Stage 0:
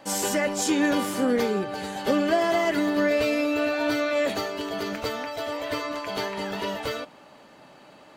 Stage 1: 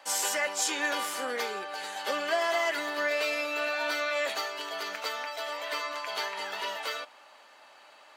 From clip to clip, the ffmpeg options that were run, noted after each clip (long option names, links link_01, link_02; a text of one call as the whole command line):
ffmpeg -i in.wav -af "highpass=870,highshelf=frequency=12000:gain=-3.5" out.wav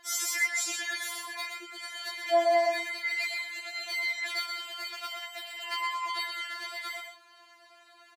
ffmpeg -i in.wav -af "aecho=1:1:123:0.501,afftfilt=real='re*4*eq(mod(b,16),0)':imag='im*4*eq(mod(b,16),0)':win_size=2048:overlap=0.75" out.wav